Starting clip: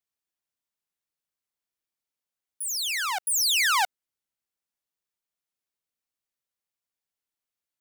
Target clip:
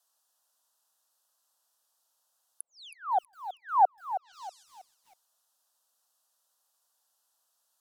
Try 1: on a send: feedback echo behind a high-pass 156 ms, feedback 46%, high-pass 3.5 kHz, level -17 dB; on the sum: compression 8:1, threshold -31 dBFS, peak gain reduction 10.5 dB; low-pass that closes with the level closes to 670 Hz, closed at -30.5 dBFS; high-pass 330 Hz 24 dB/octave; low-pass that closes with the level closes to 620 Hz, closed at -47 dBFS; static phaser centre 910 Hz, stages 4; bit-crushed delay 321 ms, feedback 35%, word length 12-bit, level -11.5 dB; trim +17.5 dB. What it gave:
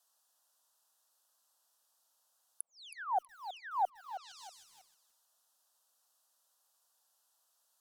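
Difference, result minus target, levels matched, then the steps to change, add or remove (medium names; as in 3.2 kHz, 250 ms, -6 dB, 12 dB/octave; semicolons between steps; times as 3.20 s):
compression: peak gain reduction +10.5 dB
remove: compression 8:1, threshold -31 dBFS, peak gain reduction 10.5 dB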